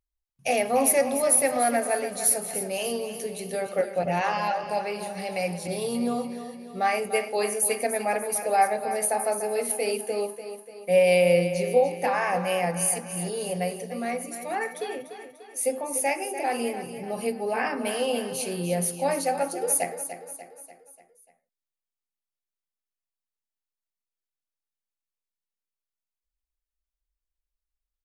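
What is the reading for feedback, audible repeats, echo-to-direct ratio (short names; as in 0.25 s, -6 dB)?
50%, 5, -9.0 dB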